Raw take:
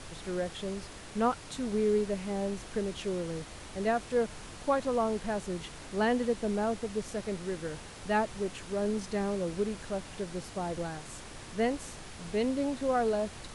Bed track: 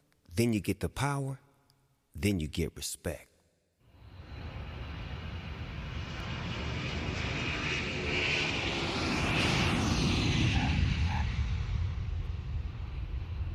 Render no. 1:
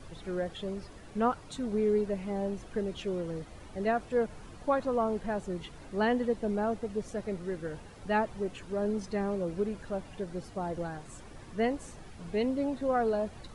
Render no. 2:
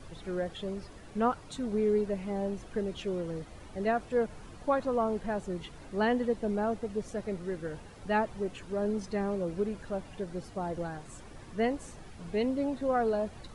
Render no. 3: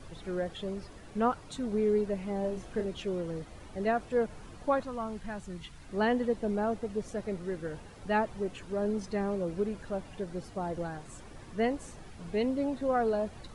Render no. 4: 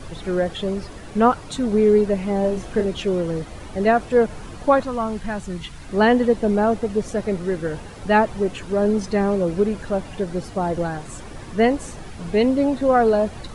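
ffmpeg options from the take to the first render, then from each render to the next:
-af "afftdn=nr=11:nf=-46"
-af anull
-filter_complex "[0:a]asettb=1/sr,asplit=3[s0][s1][s2];[s0]atrim=end=2.414[s3];[s1]atrim=start=2.41:end=2.86,asetpts=PTS-STARTPTS,afade=t=in:d=0.004:c=qsin,afade=t=out:st=0.446:d=0.004:c=qsin,asplit=2[s4][s5];[s5]adelay=32,volume=0.562[s6];[s4][s6]amix=inputs=2:normalize=0,atrim=end_sample=19845[s7];[s2]atrim=start=2.856[s8];[s3][s7]acrossfade=d=0.004:c1=hsin:c2=qsin[s9];[s9][s8]acrossfade=d=0.004:c1=qsin:c2=hsin,asettb=1/sr,asplit=3[s10][s11][s12];[s10]atrim=end=4.834[s13];[s11]atrim=start=4.83:end=5.89,asetpts=PTS-STARTPTS,afade=t=in:d=0.004:c=qsin,afade=t=out:st=1.056:d=0.004:c=qsin,equalizer=f=480:w=0.7:g=-11[s14];[s12]atrim=start=5.886[s15];[s13][s14]acrossfade=d=0.004:c1=hsin:c2=qsin[s16];[s16][s15]acrossfade=d=0.004:c1=qsin:c2=hsin"
-af "volume=3.98"

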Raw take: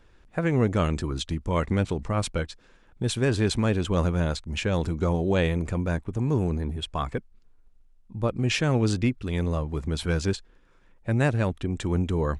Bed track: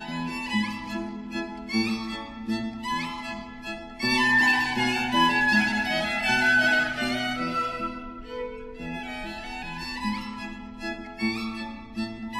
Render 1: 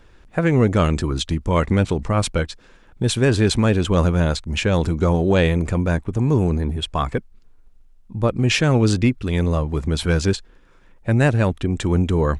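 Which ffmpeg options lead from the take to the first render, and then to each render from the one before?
-af "acontrast=83"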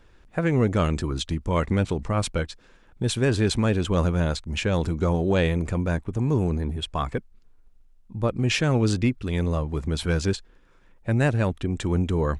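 -af "volume=0.562"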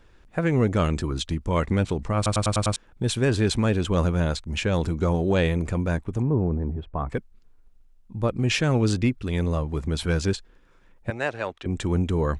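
-filter_complex "[0:a]asettb=1/sr,asplit=3[s0][s1][s2];[s0]atrim=end=6.224[s3];[s1]atrim=start=6.22:end=7.1,asetpts=PTS-STARTPTS,afade=t=in:d=0.004:c=qsin,afade=t=out:st=0.876:d=0.004:c=qsin,lowpass=1000[s4];[s2]atrim=start=7.096[s5];[s3][s4]acrossfade=d=0.004:c1=hsin:c2=qsin[s6];[s6][s5]acrossfade=d=0.004:c1=qsin:c2=hsin,asettb=1/sr,asplit=3[s7][s8][s9];[s7]atrim=end=11.104[s10];[s8]atrim=start=11.1:end=11.66,asetpts=PTS-STARTPTS,afade=t=in:d=0.004:c=qsin,afade=t=out:st=0.556:d=0.004:c=qsin,acrossover=split=410 6700:gain=0.112 1 0.141[s11][s12][s13];[s11][s12][s13]amix=inputs=3:normalize=0[s14];[s9]atrim=start=11.656[s15];[s10][s14]acrossfade=d=0.004:c1=hsin:c2=qsin[s16];[s16][s15]acrossfade=d=0.004:c1=qsin:c2=hsin,asplit=7[s17][s18][s19][s20][s21][s22][s23];[s17]atrim=end=2.262[s24];[s18]atrim=start=2.158:end=2.262[s25];[s19]atrim=start=2.158:end=2.262[s26];[s20]atrim=start=2.158:end=2.262[s27];[s21]atrim=start=2.158:end=2.262[s28];[s22]atrim=start=2.158:end=2.262[s29];[s23]atrim=start=2.758[s30];[s24][s25]acrossfade=d=0.004:c1=hsin:c2=hsin[s31];[s31][s26]acrossfade=d=0.004:c1=hsin:c2=hsin[s32];[s32][s27]acrossfade=d=0.004:c1=hsin:c2=hsin[s33];[s33][s28]acrossfade=d=0.004:c1=hsin:c2=hsin[s34];[s34][s29]acrossfade=d=0.004:c1=hsin:c2=hsin[s35];[s35][s30]acrossfade=d=0.004:c1=hsin:c2=hsin"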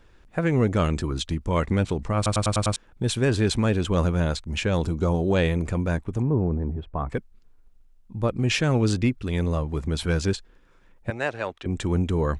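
-filter_complex "[0:a]asettb=1/sr,asplit=3[s0][s1][s2];[s0]atrim=end=4.824[s3];[s1]atrim=start=4.82:end=5.33,asetpts=PTS-STARTPTS,afade=t=in:d=0.004:c=qsin,afade=t=out:st=0.506:d=0.004:c=qsin,equalizer=f=1900:t=o:w=0.68:g=-6.5[s4];[s2]atrim=start=5.326[s5];[s3][s4]acrossfade=d=0.004:c1=hsin:c2=qsin[s6];[s6][s5]acrossfade=d=0.004:c1=qsin:c2=hsin"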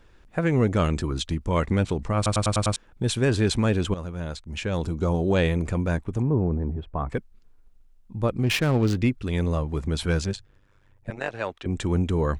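-filter_complex "[0:a]asettb=1/sr,asplit=3[s0][s1][s2];[s0]atrim=end=8.434[s3];[s1]atrim=start=8.43:end=8.97,asetpts=PTS-STARTPTS,afade=t=in:d=0.004:c=qsin,afade=t=out:st=0.536:d=0.004:c=qsin,adynamicsmooth=sensitivity=5:basefreq=770[s4];[s2]atrim=start=8.966[s5];[s3][s4]acrossfade=d=0.004:c1=hsin:c2=qsin[s6];[s6][s5]acrossfade=d=0.004:c1=qsin:c2=hsin,asettb=1/sr,asplit=3[s7][s8][s9];[s7]atrim=end=10.244[s10];[s8]atrim=start=10.24:end=11.34,asetpts=PTS-STARTPTS,afade=t=in:d=0.004:c=qsin,afade=t=out:st=1.096:d=0.004:c=qsin,tremolo=f=99:d=0.857[s11];[s9]atrim=start=11.336[s12];[s10][s11]acrossfade=d=0.004:c1=hsin:c2=qsin[s13];[s13][s12]acrossfade=d=0.004:c1=qsin:c2=hsin,asplit=2[s14][s15];[s14]atrim=end=3.94,asetpts=PTS-STARTPTS,afade=t=out:st=3.936:d=0.004:c=hsin:silence=0.199526[s16];[s15]atrim=start=3.94,asetpts=PTS-STARTPTS,afade=t=in:d=1.32:silence=0.199526[s17];[s16][s17]concat=n=2:v=0:a=1"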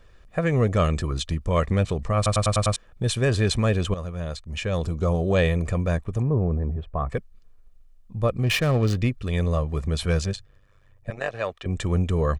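-af "aecho=1:1:1.7:0.46"

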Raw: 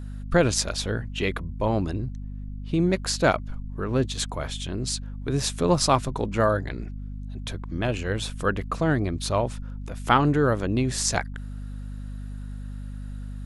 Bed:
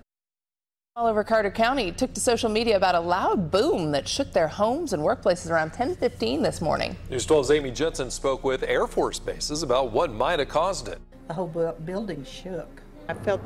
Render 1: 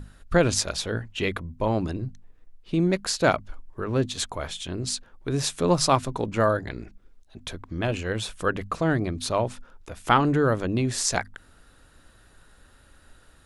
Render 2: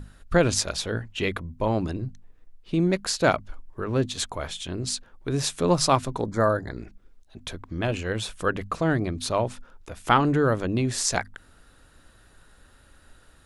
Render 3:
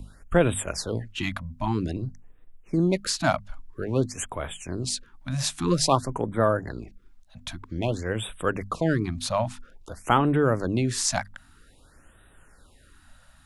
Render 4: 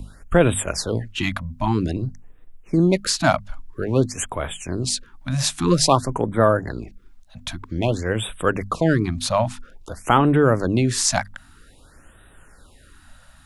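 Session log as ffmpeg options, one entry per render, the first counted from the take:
-af "bandreject=f=50:t=h:w=6,bandreject=f=100:t=h:w=6,bandreject=f=150:t=h:w=6,bandreject=f=200:t=h:w=6,bandreject=f=250:t=h:w=6"
-filter_complex "[0:a]asettb=1/sr,asplit=3[s0][s1][s2];[s0]atrim=end=6.214[s3];[s1]atrim=start=6.21:end=6.77,asetpts=PTS-STARTPTS,afade=t=in:d=0.004:c=qsin,afade=t=out:st=0.556:d=0.004:c=qsin,asuperstop=centerf=2700:order=4:qfactor=1.4[s4];[s2]atrim=start=6.766[s5];[s3][s4]acrossfade=d=0.004:c1=hsin:c2=qsin[s6];[s6][s5]acrossfade=d=0.004:c1=qsin:c2=hsin"
-filter_complex "[0:a]acrossover=split=130|1400|2600[s0][s1][s2][s3];[s2]asoftclip=type=tanh:threshold=0.0251[s4];[s0][s1][s4][s3]amix=inputs=4:normalize=0,afftfilt=real='re*(1-between(b*sr/1024,360*pow(5600/360,0.5+0.5*sin(2*PI*0.51*pts/sr))/1.41,360*pow(5600/360,0.5+0.5*sin(2*PI*0.51*pts/sr))*1.41))':imag='im*(1-between(b*sr/1024,360*pow(5600/360,0.5+0.5*sin(2*PI*0.51*pts/sr))/1.41,360*pow(5600/360,0.5+0.5*sin(2*PI*0.51*pts/sr))*1.41))':win_size=1024:overlap=0.75"
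-af "volume=1.88,alimiter=limit=0.794:level=0:latency=1"

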